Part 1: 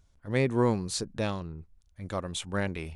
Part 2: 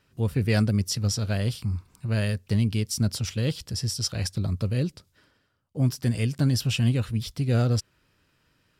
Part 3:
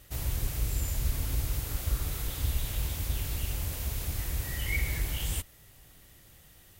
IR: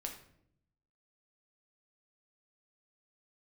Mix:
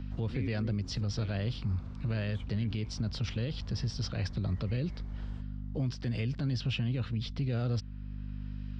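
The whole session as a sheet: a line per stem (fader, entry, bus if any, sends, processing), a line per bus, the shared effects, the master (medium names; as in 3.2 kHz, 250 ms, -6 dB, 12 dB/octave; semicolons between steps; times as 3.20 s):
-1.5 dB, 0.00 s, no send, de-esser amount 80%; vowel filter i
-3.0 dB, 0.00 s, no send, low-pass 4.4 kHz 24 dB/octave; hum 50 Hz, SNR 14 dB; three bands compressed up and down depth 40%
-9.5 dB, 0.00 s, no send, low-pass 5 kHz 24 dB/octave; resonant high shelf 1.8 kHz -10.5 dB, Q 1.5; compression, threshold -33 dBFS, peak gain reduction 10 dB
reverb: none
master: peak limiter -24.5 dBFS, peak gain reduction 9.5 dB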